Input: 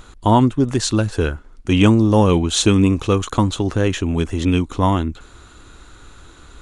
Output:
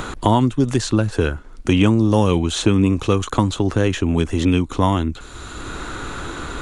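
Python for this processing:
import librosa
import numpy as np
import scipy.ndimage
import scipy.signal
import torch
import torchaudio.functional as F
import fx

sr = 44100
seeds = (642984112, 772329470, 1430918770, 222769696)

y = fx.band_squash(x, sr, depth_pct=70)
y = y * 10.0 ** (-1.0 / 20.0)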